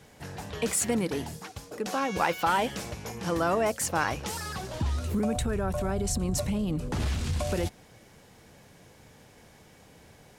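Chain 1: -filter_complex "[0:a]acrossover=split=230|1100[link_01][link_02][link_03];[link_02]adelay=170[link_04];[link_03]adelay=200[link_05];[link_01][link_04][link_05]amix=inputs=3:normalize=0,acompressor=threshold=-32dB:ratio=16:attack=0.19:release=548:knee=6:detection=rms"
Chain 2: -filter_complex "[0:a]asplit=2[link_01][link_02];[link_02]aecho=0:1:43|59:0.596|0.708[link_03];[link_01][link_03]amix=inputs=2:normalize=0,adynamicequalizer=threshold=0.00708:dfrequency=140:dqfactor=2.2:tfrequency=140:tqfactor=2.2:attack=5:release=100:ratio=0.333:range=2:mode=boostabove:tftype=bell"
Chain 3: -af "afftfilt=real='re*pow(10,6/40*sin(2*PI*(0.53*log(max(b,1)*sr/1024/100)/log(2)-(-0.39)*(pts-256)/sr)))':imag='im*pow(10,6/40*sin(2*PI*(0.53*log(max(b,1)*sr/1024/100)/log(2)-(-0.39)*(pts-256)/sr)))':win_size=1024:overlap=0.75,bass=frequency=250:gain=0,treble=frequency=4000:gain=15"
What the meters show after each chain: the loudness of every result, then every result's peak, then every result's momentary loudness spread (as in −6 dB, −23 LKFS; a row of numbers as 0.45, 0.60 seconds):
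−41.5, −26.5, −24.0 LKFS; −29.0, −10.0, −1.5 dBFS; 15, 10, 12 LU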